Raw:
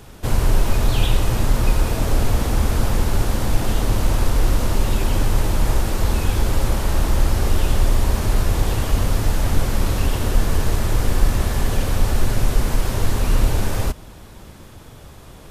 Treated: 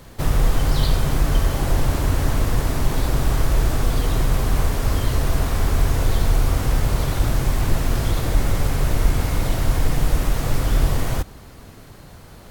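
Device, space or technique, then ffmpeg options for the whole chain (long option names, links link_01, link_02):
nightcore: -af "asetrate=54684,aresample=44100,volume=-1.5dB"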